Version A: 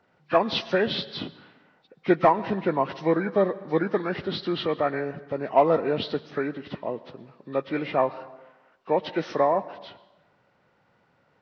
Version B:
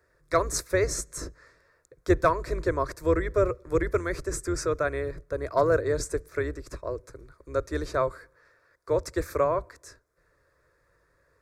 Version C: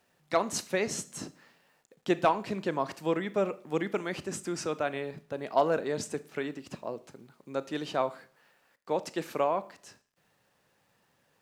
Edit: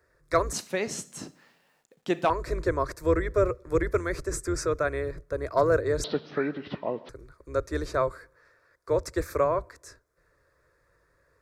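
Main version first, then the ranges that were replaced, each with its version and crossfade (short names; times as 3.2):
B
0.53–2.3 from C
6.04–7.09 from A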